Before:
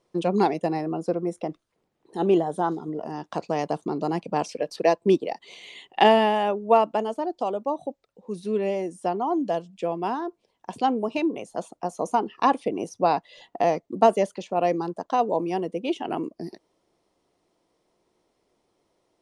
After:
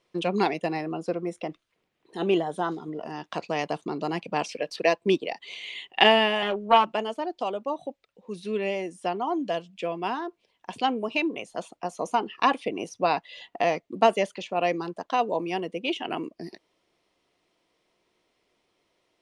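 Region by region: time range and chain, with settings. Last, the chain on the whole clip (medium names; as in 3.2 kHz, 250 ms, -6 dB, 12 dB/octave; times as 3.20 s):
6.42–6.94 s: comb 5.5 ms, depth 64% + loudspeaker Doppler distortion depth 0.18 ms
whole clip: peaking EQ 2.6 kHz +11.5 dB 1.8 oct; band-stop 840 Hz, Q 18; trim -4 dB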